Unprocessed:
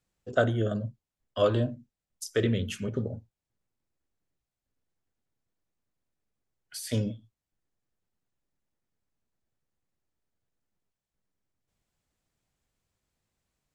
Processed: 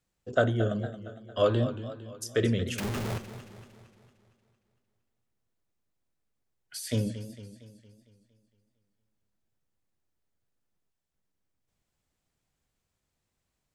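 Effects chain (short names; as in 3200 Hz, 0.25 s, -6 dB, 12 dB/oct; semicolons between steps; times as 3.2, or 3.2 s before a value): 2.78–3.18 infinite clipping; warbling echo 0.229 s, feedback 53%, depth 124 cents, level -12.5 dB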